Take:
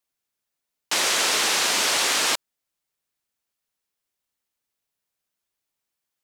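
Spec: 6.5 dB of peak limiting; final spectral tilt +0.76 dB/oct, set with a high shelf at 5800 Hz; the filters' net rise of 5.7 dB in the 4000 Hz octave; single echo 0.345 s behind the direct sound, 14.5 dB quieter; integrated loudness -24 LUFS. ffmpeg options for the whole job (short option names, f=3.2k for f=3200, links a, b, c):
-af "equalizer=f=4k:t=o:g=4,highshelf=f=5.8k:g=8,alimiter=limit=-10dB:level=0:latency=1,aecho=1:1:345:0.188,volume=-6dB"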